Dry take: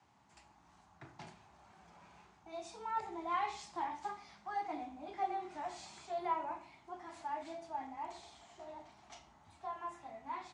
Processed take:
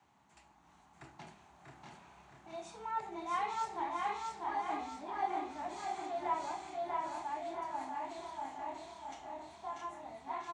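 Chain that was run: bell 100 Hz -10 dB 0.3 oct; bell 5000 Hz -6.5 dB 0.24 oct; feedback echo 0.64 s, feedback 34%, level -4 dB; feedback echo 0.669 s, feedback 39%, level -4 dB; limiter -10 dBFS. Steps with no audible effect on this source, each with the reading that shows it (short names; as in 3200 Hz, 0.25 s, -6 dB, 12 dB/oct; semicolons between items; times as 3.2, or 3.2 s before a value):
limiter -10 dBFS: input peak -23.5 dBFS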